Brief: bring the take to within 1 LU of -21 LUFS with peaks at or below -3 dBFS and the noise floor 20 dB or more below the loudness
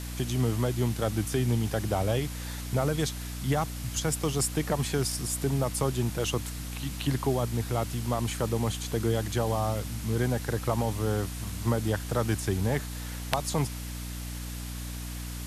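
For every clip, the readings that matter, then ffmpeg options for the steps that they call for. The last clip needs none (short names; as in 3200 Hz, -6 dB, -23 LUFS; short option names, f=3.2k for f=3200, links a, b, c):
hum 60 Hz; harmonics up to 300 Hz; hum level -34 dBFS; noise floor -37 dBFS; noise floor target -50 dBFS; loudness -30.0 LUFS; peak -8.5 dBFS; loudness target -21.0 LUFS
-> -af "bandreject=f=60:t=h:w=4,bandreject=f=120:t=h:w=4,bandreject=f=180:t=h:w=4,bandreject=f=240:t=h:w=4,bandreject=f=300:t=h:w=4"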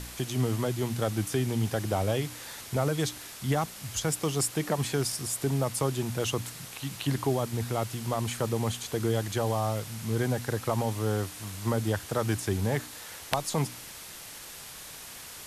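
hum none; noise floor -44 dBFS; noise floor target -50 dBFS
-> -af "afftdn=nr=6:nf=-44"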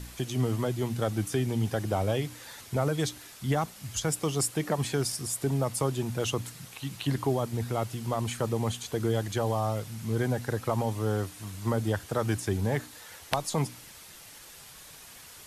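noise floor -49 dBFS; noise floor target -51 dBFS
-> -af "afftdn=nr=6:nf=-49"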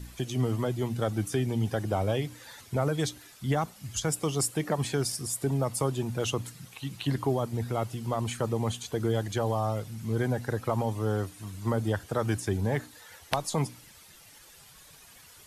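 noise floor -53 dBFS; loudness -30.5 LUFS; peak -9.5 dBFS; loudness target -21.0 LUFS
-> -af "volume=9.5dB,alimiter=limit=-3dB:level=0:latency=1"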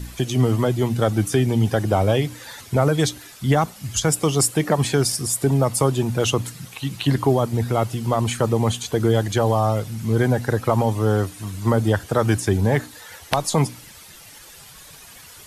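loudness -21.0 LUFS; peak -3.0 dBFS; noise floor -44 dBFS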